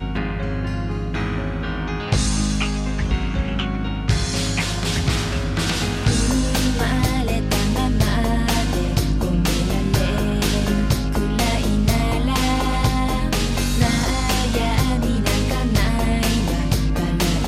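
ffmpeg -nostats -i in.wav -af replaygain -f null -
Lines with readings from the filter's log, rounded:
track_gain = +4.1 dB
track_peak = 0.313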